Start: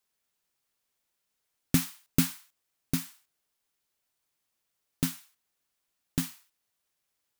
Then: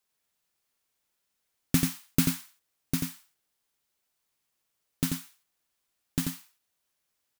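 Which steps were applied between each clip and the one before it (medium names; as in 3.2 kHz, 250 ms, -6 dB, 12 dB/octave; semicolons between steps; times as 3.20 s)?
delay 88 ms -4.5 dB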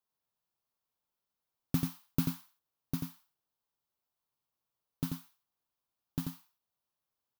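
ten-band graphic EQ 125 Hz +5 dB, 1 kHz +6 dB, 2 kHz -8 dB, 8 kHz -9 dB; trim -8 dB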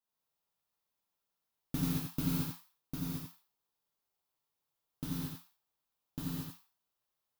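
gated-style reverb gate 250 ms flat, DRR -7.5 dB; trim -6.5 dB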